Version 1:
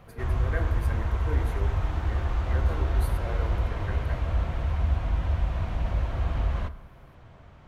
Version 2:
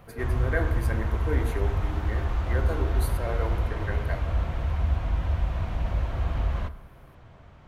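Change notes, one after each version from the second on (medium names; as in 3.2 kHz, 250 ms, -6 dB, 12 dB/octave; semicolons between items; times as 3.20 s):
speech +6.0 dB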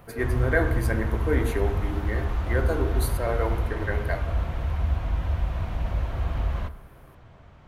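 speech +5.5 dB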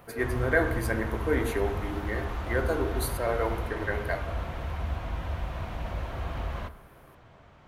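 master: add bass shelf 150 Hz -9 dB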